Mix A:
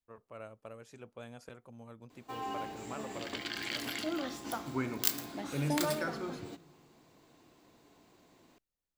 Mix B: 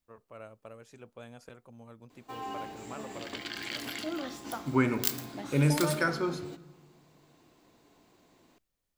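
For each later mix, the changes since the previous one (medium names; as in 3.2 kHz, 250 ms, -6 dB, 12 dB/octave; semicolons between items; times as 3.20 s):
second voice +9.5 dB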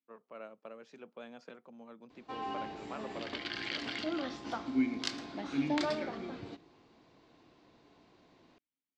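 first voice: add steep high-pass 160 Hz 48 dB/octave; second voice: add vowel filter i; master: add low-pass 5.2 kHz 24 dB/octave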